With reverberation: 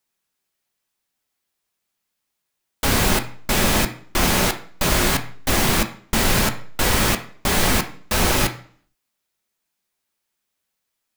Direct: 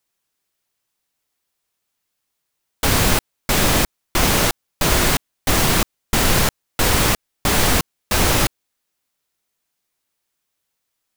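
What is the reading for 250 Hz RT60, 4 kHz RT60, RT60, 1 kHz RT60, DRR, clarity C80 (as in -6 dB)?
0.60 s, 0.45 s, 0.50 s, 0.50 s, 5.0 dB, 15.5 dB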